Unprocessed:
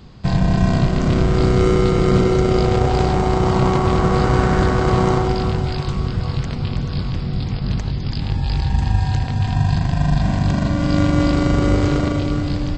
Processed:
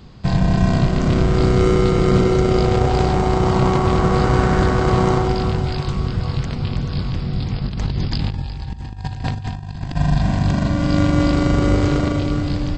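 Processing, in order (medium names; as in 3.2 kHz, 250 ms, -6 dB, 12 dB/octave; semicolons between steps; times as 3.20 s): 7.65–9.96 s: compressor with a negative ratio -23 dBFS, ratio -0.5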